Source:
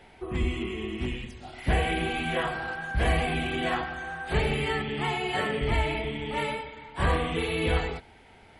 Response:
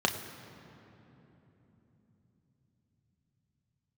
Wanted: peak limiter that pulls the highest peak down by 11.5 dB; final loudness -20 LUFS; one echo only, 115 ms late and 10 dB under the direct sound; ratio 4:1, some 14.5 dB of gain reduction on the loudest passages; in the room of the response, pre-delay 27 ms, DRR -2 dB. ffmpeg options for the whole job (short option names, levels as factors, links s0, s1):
-filter_complex "[0:a]acompressor=threshold=0.0126:ratio=4,alimiter=level_in=4.73:limit=0.0631:level=0:latency=1,volume=0.211,aecho=1:1:115:0.316,asplit=2[s0][s1];[1:a]atrim=start_sample=2205,adelay=27[s2];[s1][s2]afir=irnorm=-1:irlink=0,volume=0.376[s3];[s0][s3]amix=inputs=2:normalize=0,volume=11.2"